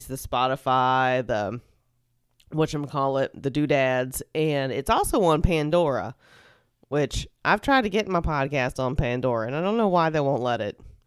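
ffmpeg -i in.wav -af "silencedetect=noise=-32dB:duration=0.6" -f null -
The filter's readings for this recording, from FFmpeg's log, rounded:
silence_start: 1.58
silence_end: 2.53 | silence_duration: 0.95
silence_start: 6.11
silence_end: 6.91 | silence_duration: 0.81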